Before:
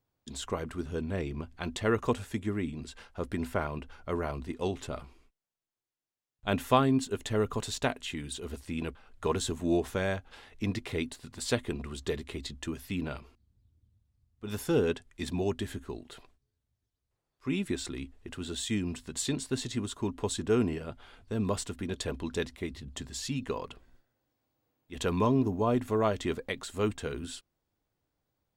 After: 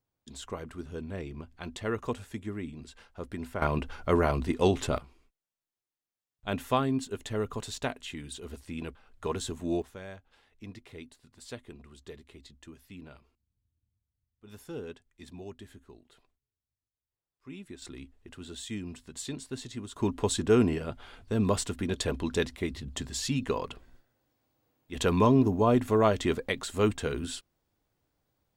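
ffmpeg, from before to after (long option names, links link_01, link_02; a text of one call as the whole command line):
ffmpeg -i in.wav -af "asetnsamples=nb_out_samples=441:pad=0,asendcmd='3.62 volume volume 8dB;4.98 volume volume -3dB;9.82 volume volume -13dB;17.82 volume volume -6dB;19.96 volume volume 4dB',volume=-4.5dB" out.wav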